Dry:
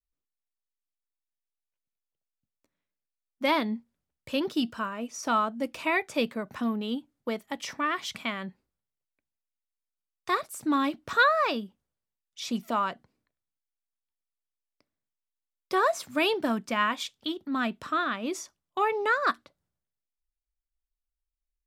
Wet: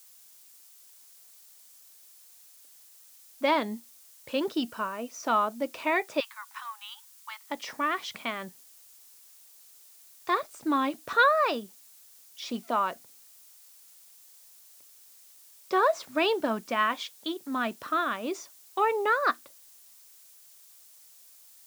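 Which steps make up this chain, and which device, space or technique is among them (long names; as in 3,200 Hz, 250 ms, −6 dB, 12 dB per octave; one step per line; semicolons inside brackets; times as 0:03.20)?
cassette deck with a dirty head (head-to-tape spacing loss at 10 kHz 30 dB; tape wow and flutter; white noise bed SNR 35 dB)
0:06.20–0:07.50: Butterworth high-pass 870 Hz 72 dB per octave
bass and treble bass −13 dB, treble +12 dB
level +4 dB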